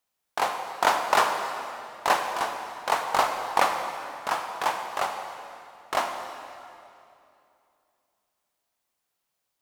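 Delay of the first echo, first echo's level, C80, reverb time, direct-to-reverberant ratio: none, none, 6.0 dB, 2.7 s, 4.0 dB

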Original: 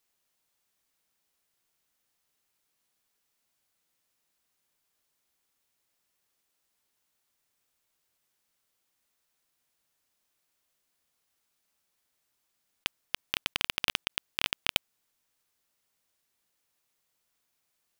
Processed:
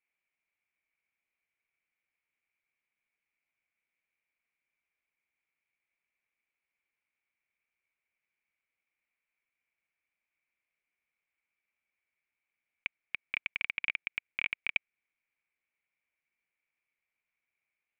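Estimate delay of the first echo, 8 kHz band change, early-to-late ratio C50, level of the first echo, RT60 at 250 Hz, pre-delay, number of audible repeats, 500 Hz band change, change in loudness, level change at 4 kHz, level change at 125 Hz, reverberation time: none, under -30 dB, none, none, none, none, none, -12.5 dB, -3.5 dB, -13.0 dB, under -10 dB, none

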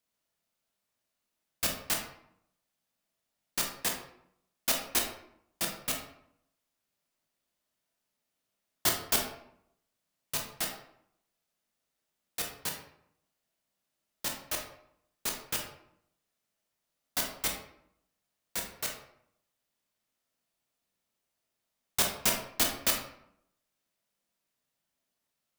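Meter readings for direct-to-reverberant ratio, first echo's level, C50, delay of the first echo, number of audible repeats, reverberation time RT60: 1.0 dB, none, 5.5 dB, none, none, 0.70 s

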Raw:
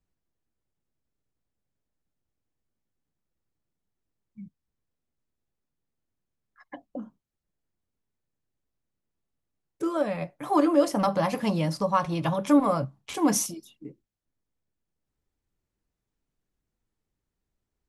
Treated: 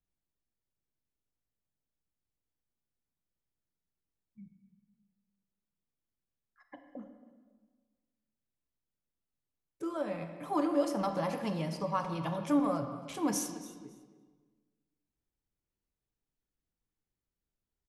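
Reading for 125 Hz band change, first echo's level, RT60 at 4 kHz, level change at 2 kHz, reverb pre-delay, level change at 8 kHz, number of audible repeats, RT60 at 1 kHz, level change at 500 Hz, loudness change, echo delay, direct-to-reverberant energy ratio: -8.0 dB, -17.0 dB, 1.2 s, -8.0 dB, 32 ms, -9.0 dB, 2, 1.4 s, -8.0 dB, -8.0 dB, 0.277 s, 6.5 dB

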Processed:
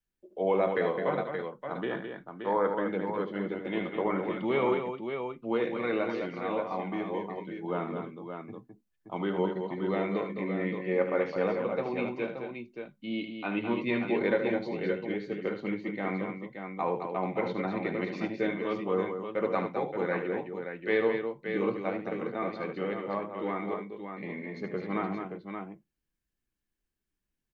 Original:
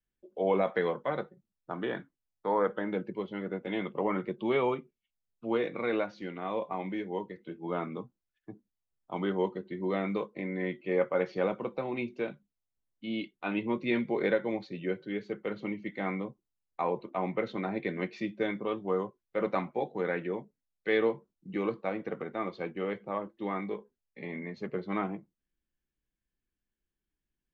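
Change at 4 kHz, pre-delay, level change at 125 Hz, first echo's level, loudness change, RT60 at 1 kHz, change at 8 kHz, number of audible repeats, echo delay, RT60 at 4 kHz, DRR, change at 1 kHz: +0.5 dB, none, +2.0 dB, -9.0 dB, +1.5 dB, none, n/a, 3, 75 ms, none, none, +2.0 dB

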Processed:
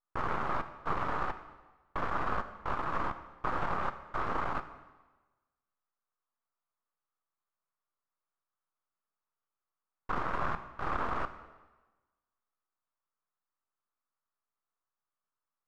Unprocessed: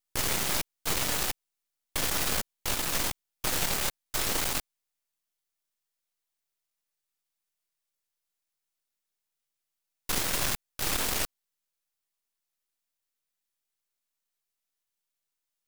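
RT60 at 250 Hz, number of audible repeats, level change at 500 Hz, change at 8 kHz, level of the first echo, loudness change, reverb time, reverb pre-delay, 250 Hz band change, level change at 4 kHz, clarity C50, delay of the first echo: 1.2 s, none, -1.5 dB, under -35 dB, none, -6.5 dB, 1.2 s, 6 ms, -2.5 dB, -21.5 dB, 12.0 dB, none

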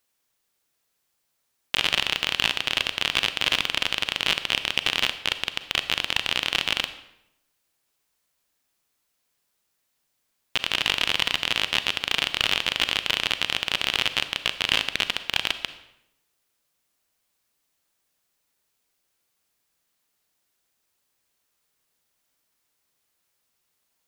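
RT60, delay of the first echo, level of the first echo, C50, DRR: 0.85 s, none, none, 12.5 dB, 11.0 dB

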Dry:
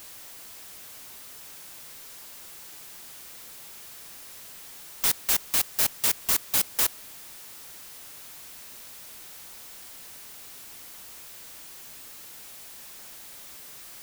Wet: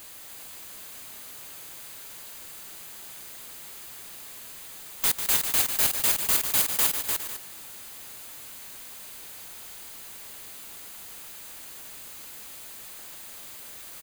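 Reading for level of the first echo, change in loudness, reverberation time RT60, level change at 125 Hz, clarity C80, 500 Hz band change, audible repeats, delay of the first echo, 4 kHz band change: -8.5 dB, +1.0 dB, none, +2.0 dB, none, +2.0 dB, 4, 0.147 s, +1.0 dB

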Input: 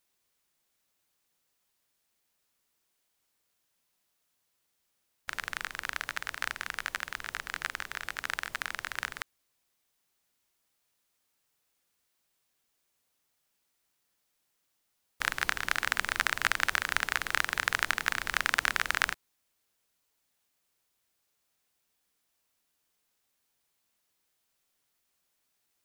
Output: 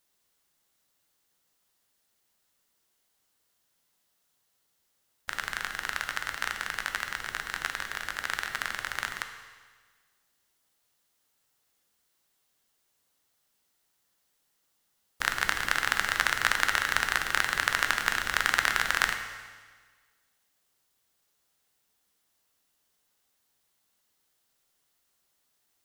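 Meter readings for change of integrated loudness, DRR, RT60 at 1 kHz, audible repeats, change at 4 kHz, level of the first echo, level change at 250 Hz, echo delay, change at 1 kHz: +3.0 dB, 5.5 dB, 1.5 s, none, +3.5 dB, none, +3.0 dB, none, +3.5 dB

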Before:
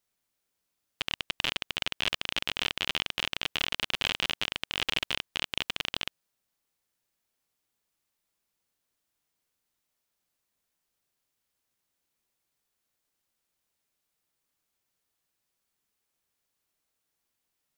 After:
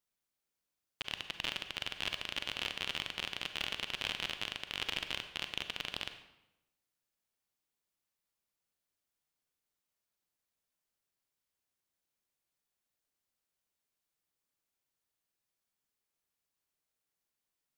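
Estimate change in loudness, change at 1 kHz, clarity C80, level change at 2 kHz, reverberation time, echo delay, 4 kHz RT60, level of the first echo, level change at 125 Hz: -7.0 dB, -7.0 dB, 11.5 dB, -7.0 dB, 0.90 s, none, 0.70 s, none, -7.0 dB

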